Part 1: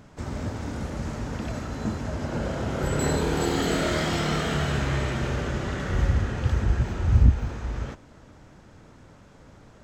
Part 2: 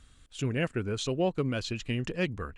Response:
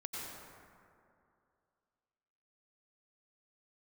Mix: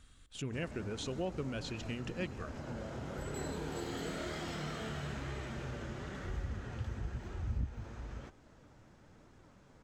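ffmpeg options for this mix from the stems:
-filter_complex "[0:a]flanger=delay=2.4:depth=6.7:regen=62:speed=1:shape=sinusoidal,adelay=350,volume=0.531[s0];[1:a]bandreject=f=60:t=h:w=6,bandreject=f=120:t=h:w=6,volume=0.668,asplit=2[s1][s2];[s2]volume=0.158[s3];[2:a]atrim=start_sample=2205[s4];[s3][s4]afir=irnorm=-1:irlink=0[s5];[s0][s1][s5]amix=inputs=3:normalize=0,acompressor=threshold=0.00501:ratio=1.5"

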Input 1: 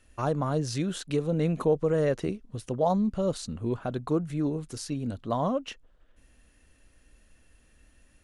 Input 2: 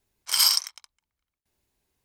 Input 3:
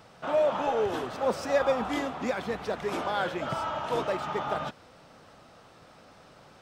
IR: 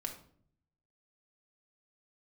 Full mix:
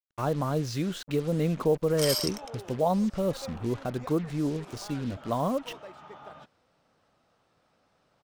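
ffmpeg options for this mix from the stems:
-filter_complex "[0:a]lowpass=6200,acrusher=bits=6:mix=0:aa=0.5,volume=0.944,asplit=2[s0][s1];[1:a]acompressor=threshold=0.0316:ratio=2.5,adelay=1700,volume=0.891[s2];[2:a]adelay=1750,volume=0.168[s3];[s1]apad=whole_len=368814[s4];[s3][s4]sidechaincompress=threshold=0.0251:ratio=8:attack=16:release=121[s5];[s0][s2][s5]amix=inputs=3:normalize=0"

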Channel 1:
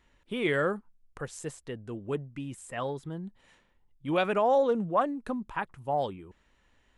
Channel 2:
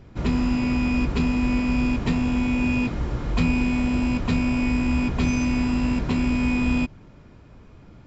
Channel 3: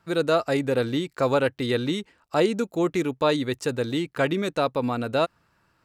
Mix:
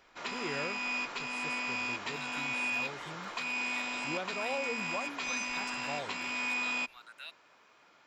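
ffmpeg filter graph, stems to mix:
-filter_complex "[0:a]volume=0.282[s0];[1:a]highpass=970,volume=0.944[s1];[2:a]highpass=f=1400:w=0.5412,highpass=f=1400:w=1.3066,asplit=2[s2][s3];[s3]afreqshift=2.9[s4];[s2][s4]amix=inputs=2:normalize=1,adelay=2050,volume=0.282[s5];[s0][s1]amix=inputs=2:normalize=0,alimiter=level_in=1.06:limit=0.0631:level=0:latency=1:release=260,volume=0.944,volume=1[s6];[s5][s6]amix=inputs=2:normalize=0"

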